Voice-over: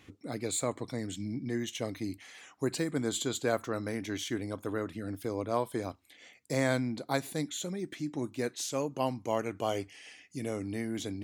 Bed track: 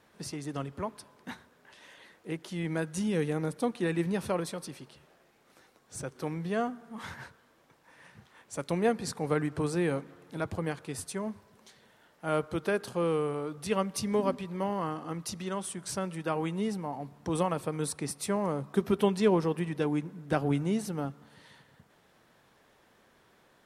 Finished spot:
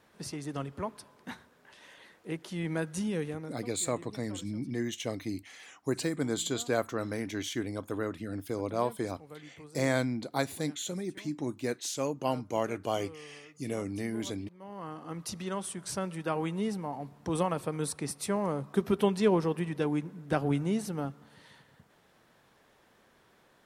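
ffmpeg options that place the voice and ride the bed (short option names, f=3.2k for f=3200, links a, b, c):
-filter_complex "[0:a]adelay=3250,volume=0.5dB[a];[1:a]volume=18.5dB,afade=t=out:st=2.93:d=0.71:silence=0.112202,afade=t=in:st=14.59:d=0.75:silence=0.112202[b];[a][b]amix=inputs=2:normalize=0"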